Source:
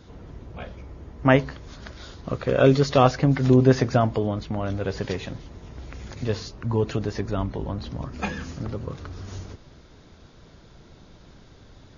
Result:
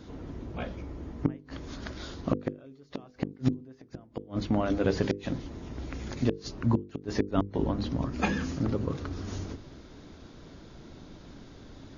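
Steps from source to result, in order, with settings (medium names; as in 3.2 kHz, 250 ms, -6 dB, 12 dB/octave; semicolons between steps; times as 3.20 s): inverted gate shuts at -14 dBFS, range -37 dB; peaking EQ 280 Hz +8 dB 0.87 oct; hum notches 50/100/150/200/250/300/350/400/450/500 Hz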